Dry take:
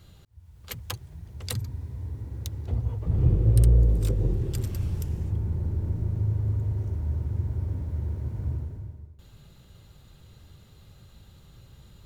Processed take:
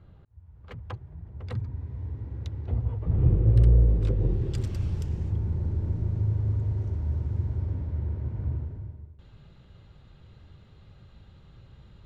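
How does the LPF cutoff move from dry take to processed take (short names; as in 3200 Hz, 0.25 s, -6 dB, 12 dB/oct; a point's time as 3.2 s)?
1.46 s 1400 Hz
2.01 s 2700 Hz
4.03 s 2700 Hz
4.61 s 5700 Hz
7.41 s 5700 Hz
8.09 s 3000 Hz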